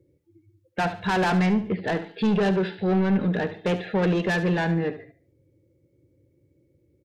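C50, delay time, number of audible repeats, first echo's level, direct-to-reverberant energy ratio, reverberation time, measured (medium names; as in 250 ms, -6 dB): no reverb, 72 ms, 3, -12.5 dB, no reverb, no reverb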